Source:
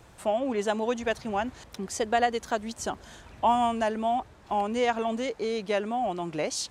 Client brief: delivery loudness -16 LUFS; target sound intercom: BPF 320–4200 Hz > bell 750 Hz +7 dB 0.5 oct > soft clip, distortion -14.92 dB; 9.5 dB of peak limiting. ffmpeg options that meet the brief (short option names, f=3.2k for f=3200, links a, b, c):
-af "alimiter=limit=-21dB:level=0:latency=1,highpass=320,lowpass=4.2k,equalizer=f=750:t=o:w=0.5:g=7,asoftclip=threshold=-22dB,volume=15dB"